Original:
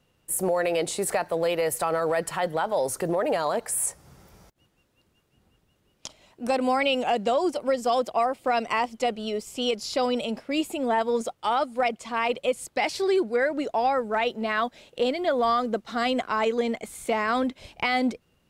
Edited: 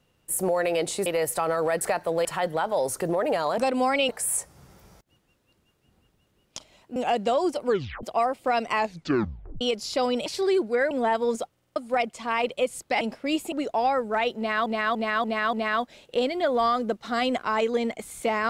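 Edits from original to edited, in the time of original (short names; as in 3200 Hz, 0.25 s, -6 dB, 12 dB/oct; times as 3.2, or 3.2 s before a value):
1.06–1.5 move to 2.25
6.45–6.96 move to 3.58
7.66 tape stop 0.37 s
8.75 tape stop 0.86 s
10.26–10.77 swap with 12.87–13.52
11.37 stutter in place 0.05 s, 5 plays
14.37–14.66 loop, 5 plays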